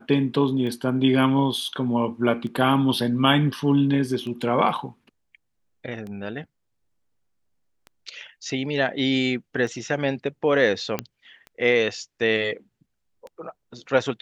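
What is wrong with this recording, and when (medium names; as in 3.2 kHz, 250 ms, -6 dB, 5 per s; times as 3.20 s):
tick 33 1/3 rpm -25 dBFS
10.99 s: pop -10 dBFS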